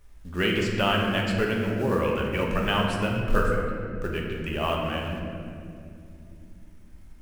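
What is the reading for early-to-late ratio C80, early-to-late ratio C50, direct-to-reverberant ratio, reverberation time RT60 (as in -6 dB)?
2.5 dB, 1.0 dB, -1.5 dB, 2.6 s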